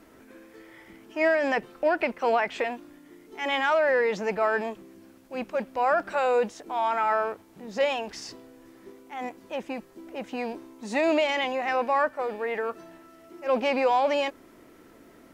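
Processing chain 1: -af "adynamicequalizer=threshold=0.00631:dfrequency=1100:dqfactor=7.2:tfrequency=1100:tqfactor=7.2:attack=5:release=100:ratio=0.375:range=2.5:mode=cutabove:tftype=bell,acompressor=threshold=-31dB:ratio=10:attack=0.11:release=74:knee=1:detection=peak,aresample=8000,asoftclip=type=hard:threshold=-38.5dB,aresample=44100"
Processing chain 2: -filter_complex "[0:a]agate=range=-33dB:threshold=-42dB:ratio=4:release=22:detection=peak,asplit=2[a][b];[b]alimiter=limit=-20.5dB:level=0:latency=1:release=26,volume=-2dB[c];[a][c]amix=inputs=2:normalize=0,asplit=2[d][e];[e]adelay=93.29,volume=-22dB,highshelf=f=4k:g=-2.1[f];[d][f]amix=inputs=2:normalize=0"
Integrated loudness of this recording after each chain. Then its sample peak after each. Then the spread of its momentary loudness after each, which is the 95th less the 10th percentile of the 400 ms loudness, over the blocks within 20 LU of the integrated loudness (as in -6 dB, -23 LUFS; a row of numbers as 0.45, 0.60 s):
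-43.0, -23.0 LUFS; -33.0, -10.0 dBFS; 10, 14 LU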